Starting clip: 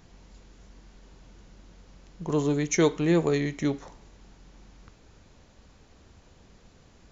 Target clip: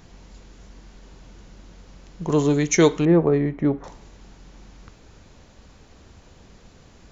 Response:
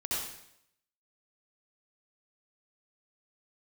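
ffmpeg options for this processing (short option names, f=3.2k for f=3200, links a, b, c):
-filter_complex "[0:a]asettb=1/sr,asplit=3[a][b][c];[a]atrim=end=3.054[d];[b]atrim=start=3.05:end=3.84,asetpts=PTS-STARTPTS,afade=t=in:d=0.004:c=qsin,afade=t=out:st=0.786:d=0.004:c=qsin,lowpass=1.2k[e];[c]atrim=start=3.836[f];[d][e]acrossfade=d=0.004:c1=hsin:c2=qsin[g];[g][f]acrossfade=d=0.004:c1=qsin:c2=hsin,volume=6dB"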